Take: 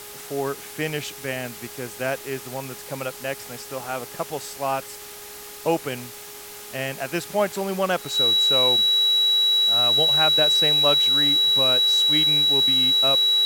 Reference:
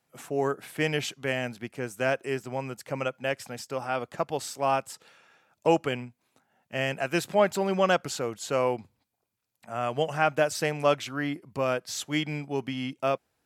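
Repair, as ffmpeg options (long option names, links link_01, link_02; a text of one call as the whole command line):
ffmpeg -i in.wav -af "bandreject=frequency=413.9:width_type=h:width=4,bandreject=frequency=827.8:width_type=h:width=4,bandreject=frequency=1241.7:width_type=h:width=4,bandreject=frequency=1655.6:width_type=h:width=4,bandreject=frequency=2069.5:width_type=h:width=4,bandreject=frequency=3900:width=30,afftdn=noise_reduction=30:noise_floor=-39" out.wav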